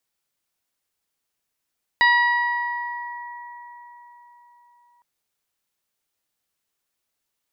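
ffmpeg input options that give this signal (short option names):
-f lavfi -i "aevalsrc='0.133*pow(10,-3*t/4.55)*sin(2*PI*962*t)+0.211*pow(10,-3*t/2.97)*sin(2*PI*1924*t)+0.0251*pow(10,-3*t/1.39)*sin(2*PI*2886*t)+0.0531*pow(10,-3*t/1.18)*sin(2*PI*3848*t)+0.0299*pow(10,-3*t/1.41)*sin(2*PI*4810*t)':d=3.01:s=44100"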